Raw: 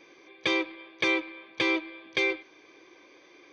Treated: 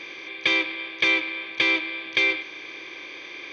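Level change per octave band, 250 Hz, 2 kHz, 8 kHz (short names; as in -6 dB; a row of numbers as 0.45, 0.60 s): -1.5 dB, +7.5 dB, n/a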